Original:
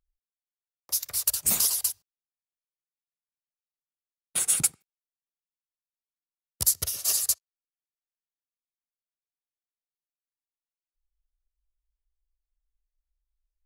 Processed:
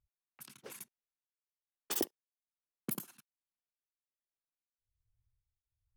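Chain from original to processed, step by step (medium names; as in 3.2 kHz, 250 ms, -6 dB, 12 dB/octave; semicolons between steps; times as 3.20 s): wide varispeed 2.29×; dynamic bell 430 Hz, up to +8 dB, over -56 dBFS, Q 0.82; tremolo triangle 1.2 Hz, depth 95%; level-controlled noise filter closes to 2.2 kHz, open at -33.5 dBFS; trim +1.5 dB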